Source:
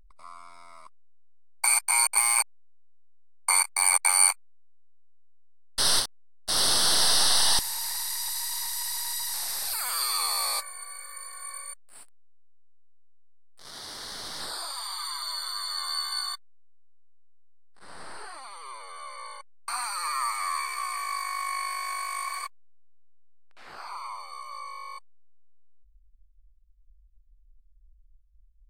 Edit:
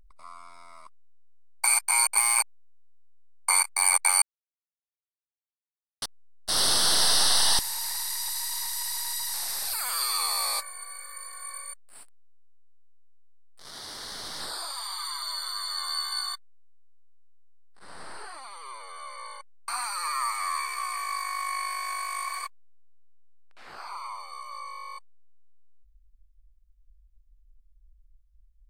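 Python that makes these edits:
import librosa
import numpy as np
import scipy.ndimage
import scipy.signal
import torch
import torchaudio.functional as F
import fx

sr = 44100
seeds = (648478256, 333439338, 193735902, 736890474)

y = fx.edit(x, sr, fx.silence(start_s=4.22, length_s=1.8), tone=tone)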